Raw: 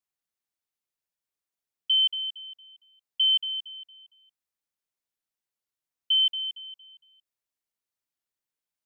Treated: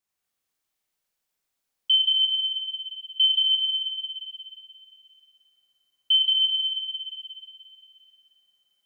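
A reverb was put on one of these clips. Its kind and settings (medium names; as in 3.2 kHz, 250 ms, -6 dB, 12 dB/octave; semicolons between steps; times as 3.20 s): Schroeder reverb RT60 2.8 s, combs from 30 ms, DRR -5 dB; trim +3 dB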